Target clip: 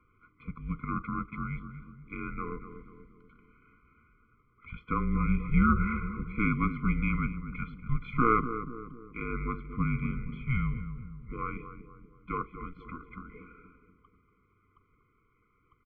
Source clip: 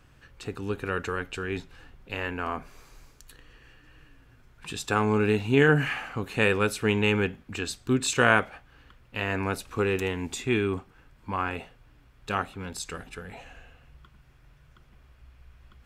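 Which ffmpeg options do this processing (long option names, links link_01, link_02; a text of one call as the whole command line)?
ffmpeg -i in.wav -filter_complex "[0:a]highpass=frequency=180:width_type=q:width=0.5412,highpass=frequency=180:width_type=q:width=1.307,lowpass=frequency=2500:width_type=q:width=0.5176,lowpass=frequency=2500:width_type=q:width=0.7071,lowpass=frequency=2500:width_type=q:width=1.932,afreqshift=-240,asplit=2[link_01][link_02];[link_02]adelay=240,lowpass=frequency=970:poles=1,volume=-8.5dB,asplit=2[link_03][link_04];[link_04]adelay=240,lowpass=frequency=970:poles=1,volume=0.53,asplit=2[link_05][link_06];[link_06]adelay=240,lowpass=frequency=970:poles=1,volume=0.53,asplit=2[link_07][link_08];[link_08]adelay=240,lowpass=frequency=970:poles=1,volume=0.53,asplit=2[link_09][link_10];[link_10]adelay=240,lowpass=frequency=970:poles=1,volume=0.53,asplit=2[link_11][link_12];[link_12]adelay=240,lowpass=frequency=970:poles=1,volume=0.53[link_13];[link_01][link_03][link_05][link_07][link_09][link_11][link_13]amix=inputs=7:normalize=0,afftfilt=real='re*eq(mod(floor(b*sr/1024/500),2),0)':imag='im*eq(mod(floor(b*sr/1024/500),2),0)':win_size=1024:overlap=0.75,volume=-2.5dB" out.wav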